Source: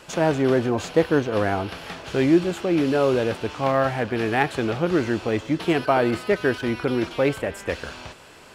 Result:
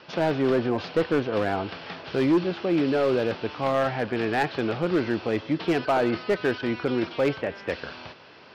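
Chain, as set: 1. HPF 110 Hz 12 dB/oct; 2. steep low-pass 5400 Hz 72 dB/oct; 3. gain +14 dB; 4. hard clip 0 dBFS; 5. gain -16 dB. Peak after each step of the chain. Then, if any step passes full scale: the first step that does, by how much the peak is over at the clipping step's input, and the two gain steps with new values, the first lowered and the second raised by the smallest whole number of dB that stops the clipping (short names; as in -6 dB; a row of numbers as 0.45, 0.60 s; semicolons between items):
-4.5, -4.5, +9.5, 0.0, -16.0 dBFS; step 3, 9.5 dB; step 3 +4 dB, step 5 -6 dB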